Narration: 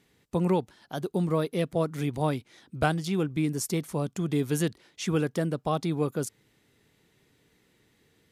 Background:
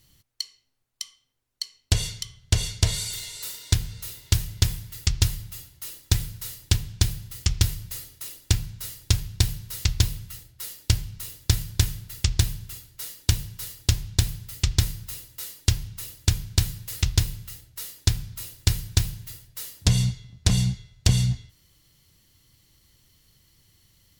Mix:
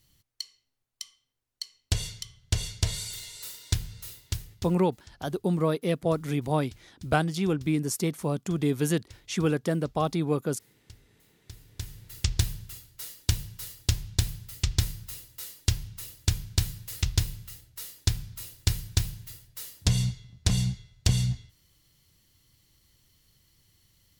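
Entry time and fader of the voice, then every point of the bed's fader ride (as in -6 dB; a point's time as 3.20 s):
4.30 s, +1.0 dB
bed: 4.14 s -5.5 dB
5.06 s -29.5 dB
11.38 s -29.5 dB
12.18 s -4 dB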